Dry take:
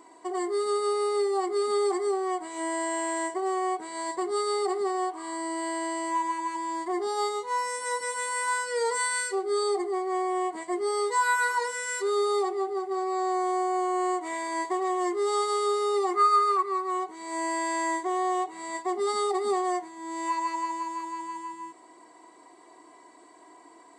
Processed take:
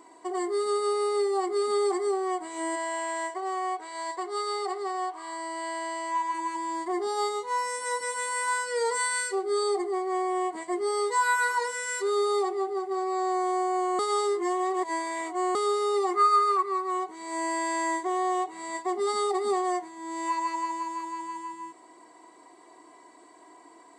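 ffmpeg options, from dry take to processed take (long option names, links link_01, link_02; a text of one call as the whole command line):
ffmpeg -i in.wav -filter_complex "[0:a]asplit=3[link_01][link_02][link_03];[link_01]afade=type=out:start_time=2.75:duration=0.02[link_04];[link_02]highpass=520,lowpass=7000,afade=type=in:start_time=2.75:duration=0.02,afade=type=out:start_time=6.33:duration=0.02[link_05];[link_03]afade=type=in:start_time=6.33:duration=0.02[link_06];[link_04][link_05][link_06]amix=inputs=3:normalize=0,asplit=3[link_07][link_08][link_09];[link_07]atrim=end=13.992[link_10];[link_08]atrim=start=13.988:end=15.552,asetpts=PTS-STARTPTS,areverse[link_11];[link_09]atrim=start=15.548[link_12];[link_10][link_11]acrossfade=duration=0.004:curve1=hsin:curve2=hsin[link_13];[link_13][link_12]acrossfade=duration=0.004:curve1=hsin:curve2=hsin" out.wav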